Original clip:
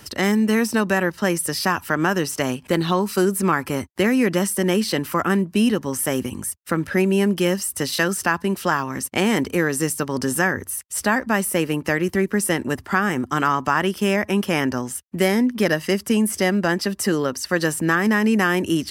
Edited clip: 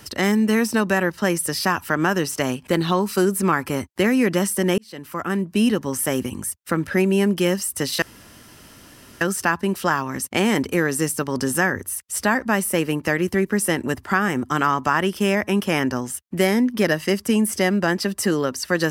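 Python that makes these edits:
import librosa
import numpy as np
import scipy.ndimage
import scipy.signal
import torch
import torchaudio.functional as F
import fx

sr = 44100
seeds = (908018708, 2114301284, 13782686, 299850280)

y = fx.edit(x, sr, fx.fade_in_span(start_s=4.78, length_s=0.87),
    fx.insert_room_tone(at_s=8.02, length_s=1.19), tone=tone)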